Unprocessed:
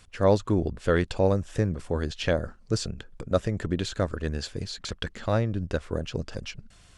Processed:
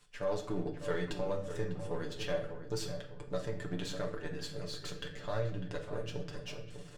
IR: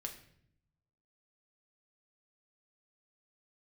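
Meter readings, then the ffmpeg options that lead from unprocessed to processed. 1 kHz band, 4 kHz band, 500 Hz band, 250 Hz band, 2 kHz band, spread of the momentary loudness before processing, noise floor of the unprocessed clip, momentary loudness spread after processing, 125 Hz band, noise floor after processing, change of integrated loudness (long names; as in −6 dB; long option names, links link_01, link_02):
−11.0 dB, −8.0 dB, −10.0 dB, −12.0 dB, −9.0 dB, 11 LU, −54 dBFS, 6 LU, −13.0 dB, −49 dBFS, −11.0 dB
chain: -filter_complex "[0:a]aeval=exprs='if(lt(val(0),0),0.447*val(0),val(0))':channel_layout=same,lowshelf=frequency=140:gain=-8.5,aecho=1:1:6.8:0.68,alimiter=limit=-18dB:level=0:latency=1:release=36,areverse,acompressor=mode=upward:threshold=-43dB:ratio=2.5,areverse,asplit=2[link_01][link_02];[link_02]adelay=600,lowpass=frequency=1700:poles=1,volume=-9dB,asplit=2[link_03][link_04];[link_04]adelay=600,lowpass=frequency=1700:poles=1,volume=0.4,asplit=2[link_05][link_06];[link_06]adelay=600,lowpass=frequency=1700:poles=1,volume=0.4,asplit=2[link_07][link_08];[link_08]adelay=600,lowpass=frequency=1700:poles=1,volume=0.4[link_09];[link_01][link_03][link_05][link_07][link_09]amix=inputs=5:normalize=0[link_10];[1:a]atrim=start_sample=2205[link_11];[link_10][link_11]afir=irnorm=-1:irlink=0,volume=-4.5dB"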